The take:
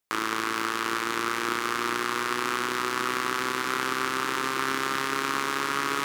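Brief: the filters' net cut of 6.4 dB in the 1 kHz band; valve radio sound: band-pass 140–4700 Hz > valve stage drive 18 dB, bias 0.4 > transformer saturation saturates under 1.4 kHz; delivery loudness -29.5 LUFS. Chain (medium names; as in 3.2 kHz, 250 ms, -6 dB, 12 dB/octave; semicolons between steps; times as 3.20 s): band-pass 140–4700 Hz; peaking EQ 1 kHz -8.5 dB; valve stage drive 18 dB, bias 0.4; transformer saturation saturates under 1.4 kHz; trim +6 dB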